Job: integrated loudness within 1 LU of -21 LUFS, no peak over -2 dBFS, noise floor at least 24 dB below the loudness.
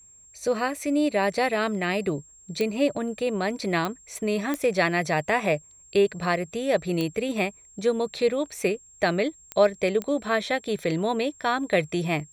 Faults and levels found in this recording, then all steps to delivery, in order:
clicks 6; steady tone 7500 Hz; tone level -50 dBFS; loudness -26.0 LUFS; peak -8.5 dBFS; loudness target -21.0 LUFS
-> de-click; notch 7500 Hz, Q 30; gain +5 dB

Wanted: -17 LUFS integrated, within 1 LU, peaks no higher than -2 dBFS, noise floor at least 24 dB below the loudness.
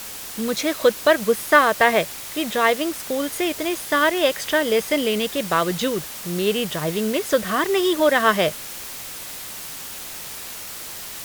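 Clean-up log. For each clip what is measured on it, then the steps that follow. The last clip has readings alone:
noise floor -35 dBFS; noise floor target -46 dBFS; loudness -21.5 LUFS; peak -1.0 dBFS; loudness target -17.0 LUFS
-> noise print and reduce 11 dB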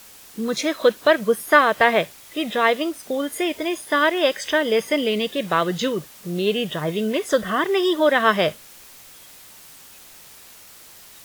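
noise floor -46 dBFS; loudness -21.0 LUFS; peak -1.0 dBFS; loudness target -17.0 LUFS
-> gain +4 dB; limiter -2 dBFS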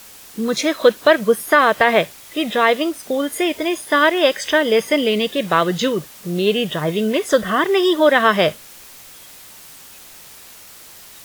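loudness -17.5 LUFS; peak -2.0 dBFS; noise floor -42 dBFS

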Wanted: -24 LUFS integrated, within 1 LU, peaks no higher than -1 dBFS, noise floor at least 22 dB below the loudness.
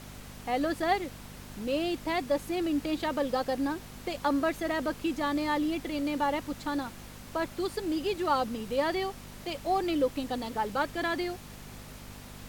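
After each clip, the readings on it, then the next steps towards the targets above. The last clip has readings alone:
hum 50 Hz; harmonics up to 250 Hz; hum level -46 dBFS; noise floor -47 dBFS; noise floor target -53 dBFS; loudness -31.0 LUFS; peak -15.0 dBFS; loudness target -24.0 LUFS
-> de-hum 50 Hz, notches 5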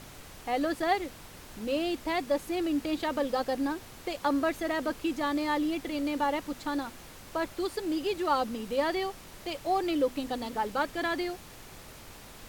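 hum none; noise floor -49 dBFS; noise floor target -53 dBFS
-> noise print and reduce 6 dB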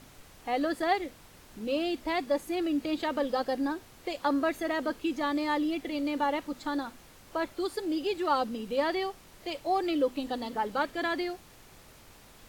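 noise floor -55 dBFS; loudness -31.0 LUFS; peak -15.0 dBFS; loudness target -24.0 LUFS
-> gain +7 dB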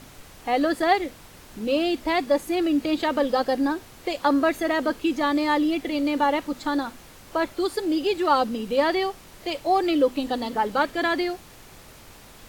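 loudness -24.0 LUFS; peak -8.0 dBFS; noise floor -48 dBFS

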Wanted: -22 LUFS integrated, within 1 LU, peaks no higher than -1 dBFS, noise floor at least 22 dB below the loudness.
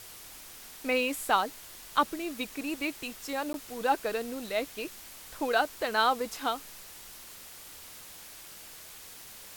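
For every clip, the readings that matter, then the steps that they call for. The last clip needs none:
dropouts 1; longest dropout 12 ms; noise floor -48 dBFS; noise floor target -53 dBFS; loudness -31.0 LUFS; peak -12.0 dBFS; loudness target -22.0 LUFS
-> interpolate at 3.53, 12 ms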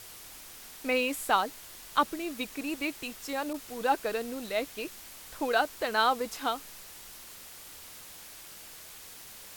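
dropouts 0; noise floor -48 dBFS; noise floor target -53 dBFS
-> denoiser 6 dB, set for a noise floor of -48 dBFS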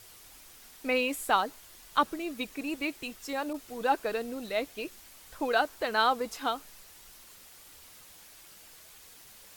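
noise floor -53 dBFS; loudness -31.0 LUFS; peak -12.0 dBFS; loudness target -22.0 LUFS
-> gain +9 dB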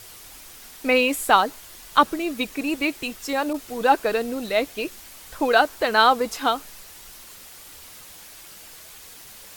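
loudness -22.0 LUFS; peak -3.0 dBFS; noise floor -44 dBFS

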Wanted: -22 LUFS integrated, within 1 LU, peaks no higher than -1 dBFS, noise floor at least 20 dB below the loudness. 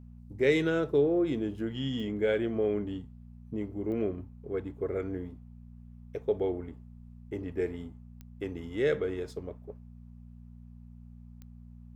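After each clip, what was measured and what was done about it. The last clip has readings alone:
clicks 4; hum 60 Hz; harmonics up to 240 Hz; hum level -47 dBFS; loudness -31.5 LUFS; peak -11.5 dBFS; loudness target -22.0 LUFS
-> de-click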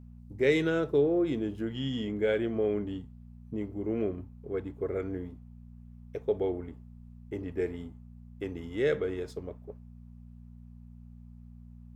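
clicks 0; hum 60 Hz; harmonics up to 240 Hz; hum level -47 dBFS
-> de-hum 60 Hz, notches 4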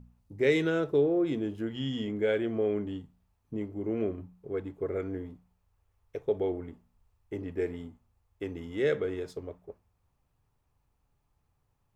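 hum none; loudness -31.5 LUFS; peak -11.5 dBFS; loudness target -22.0 LUFS
-> gain +9.5 dB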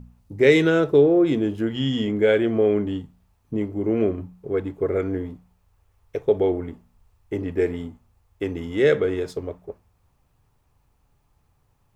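loudness -22.0 LUFS; peak -2.0 dBFS; noise floor -65 dBFS

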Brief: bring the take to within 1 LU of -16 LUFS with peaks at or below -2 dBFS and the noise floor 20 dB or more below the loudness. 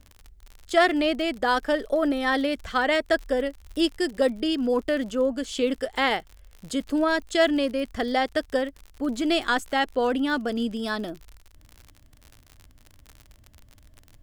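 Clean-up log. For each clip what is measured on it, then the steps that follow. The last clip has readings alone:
ticks 56/s; loudness -25.0 LUFS; peak -8.5 dBFS; loudness target -16.0 LUFS
-> de-click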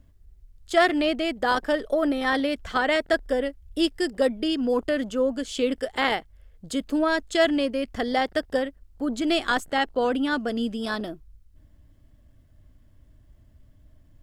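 ticks 0.84/s; loudness -25.0 LUFS; peak -8.5 dBFS; loudness target -16.0 LUFS
-> gain +9 dB; limiter -2 dBFS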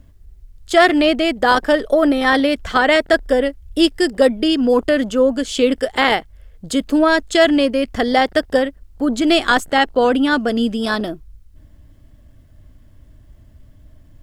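loudness -16.5 LUFS; peak -2.0 dBFS; noise floor -47 dBFS

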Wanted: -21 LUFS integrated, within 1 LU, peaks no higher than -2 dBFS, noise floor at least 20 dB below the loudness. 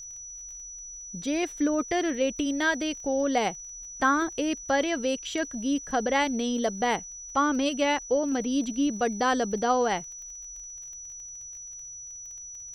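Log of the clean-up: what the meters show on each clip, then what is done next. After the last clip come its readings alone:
ticks 25/s; steady tone 5900 Hz; tone level -39 dBFS; loudness -27.0 LUFS; peak -11.5 dBFS; loudness target -21.0 LUFS
-> de-click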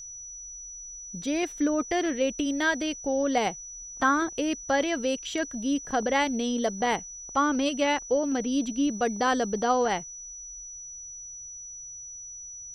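ticks 0.47/s; steady tone 5900 Hz; tone level -39 dBFS
-> notch 5900 Hz, Q 30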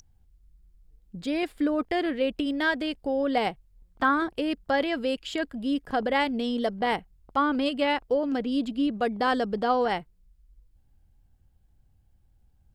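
steady tone none; loudness -27.0 LUFS; peak -11.5 dBFS; loudness target -21.0 LUFS
-> gain +6 dB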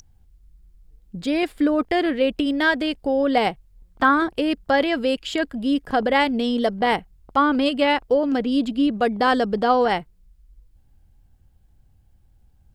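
loudness -21.0 LUFS; peak -5.5 dBFS; noise floor -57 dBFS

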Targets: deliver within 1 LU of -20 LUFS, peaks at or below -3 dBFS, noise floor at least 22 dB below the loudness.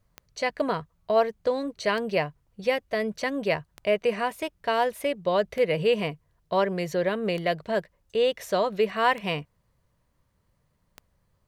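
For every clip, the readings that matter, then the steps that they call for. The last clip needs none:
clicks 7; loudness -27.0 LUFS; peak -11.0 dBFS; loudness target -20.0 LUFS
-> de-click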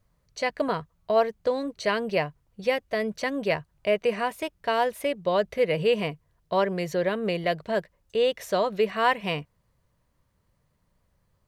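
clicks 0; loudness -27.0 LUFS; peak -11.0 dBFS; loudness target -20.0 LUFS
-> gain +7 dB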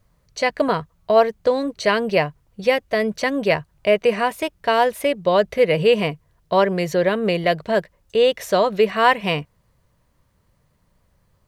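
loudness -20.0 LUFS; peak -4.0 dBFS; noise floor -64 dBFS

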